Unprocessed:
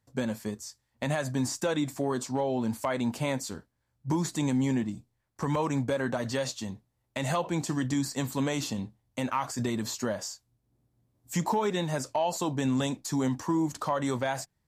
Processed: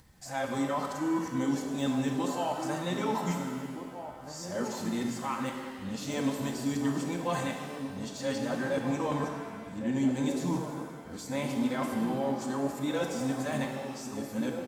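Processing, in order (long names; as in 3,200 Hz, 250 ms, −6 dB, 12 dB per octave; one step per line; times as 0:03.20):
played backwards from end to start
de-essing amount 80%
comb filter 3.9 ms, depth 39%
upward compression, threshold −39 dBFS
slap from a distant wall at 270 metres, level −8 dB
reverb with rising layers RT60 1.7 s, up +7 semitones, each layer −8 dB, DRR 2.5 dB
level −5 dB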